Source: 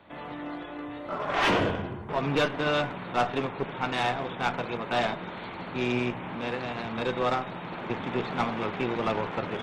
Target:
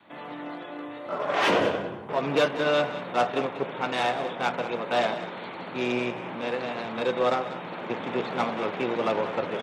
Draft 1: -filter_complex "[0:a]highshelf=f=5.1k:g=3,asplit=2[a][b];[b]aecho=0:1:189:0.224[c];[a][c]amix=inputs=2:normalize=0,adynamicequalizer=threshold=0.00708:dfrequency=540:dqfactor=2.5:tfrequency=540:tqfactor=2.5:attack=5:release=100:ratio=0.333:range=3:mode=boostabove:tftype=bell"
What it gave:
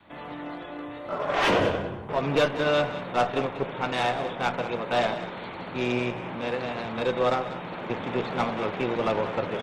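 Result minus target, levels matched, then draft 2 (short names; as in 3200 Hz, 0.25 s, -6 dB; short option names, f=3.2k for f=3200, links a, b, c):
125 Hz band +5.0 dB
-filter_complex "[0:a]highshelf=f=5.1k:g=3,asplit=2[a][b];[b]aecho=0:1:189:0.224[c];[a][c]amix=inputs=2:normalize=0,adynamicequalizer=threshold=0.00708:dfrequency=540:dqfactor=2.5:tfrequency=540:tqfactor=2.5:attack=5:release=100:ratio=0.333:range=3:mode=boostabove:tftype=bell,highpass=170"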